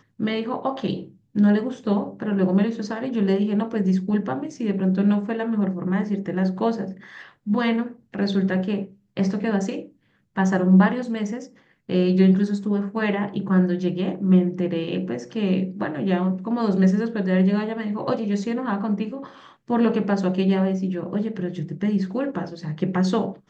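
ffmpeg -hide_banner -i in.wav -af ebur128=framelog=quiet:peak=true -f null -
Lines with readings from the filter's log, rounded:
Integrated loudness:
  I:         -23.0 LUFS
  Threshold: -33.3 LUFS
Loudness range:
  LRA:         3.5 LU
  Threshold: -43.1 LUFS
  LRA low:   -24.8 LUFS
  LRA high:  -21.3 LUFS
True peak:
  Peak:       -6.4 dBFS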